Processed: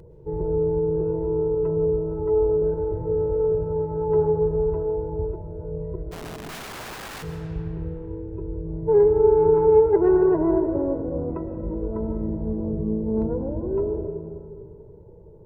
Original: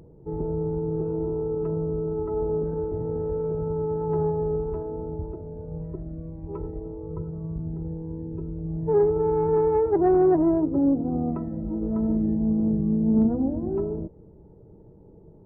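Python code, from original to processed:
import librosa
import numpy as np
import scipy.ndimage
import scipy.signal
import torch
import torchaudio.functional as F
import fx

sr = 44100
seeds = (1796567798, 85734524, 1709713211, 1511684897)

y = x + 0.79 * np.pad(x, (int(2.0 * sr / 1000.0), 0))[:len(x)]
y = fx.overflow_wrap(y, sr, gain_db=32.5, at=(6.11, 7.22), fade=0.02)
y = fx.rev_freeverb(y, sr, rt60_s=2.6, hf_ratio=0.6, predelay_ms=80, drr_db=7.5)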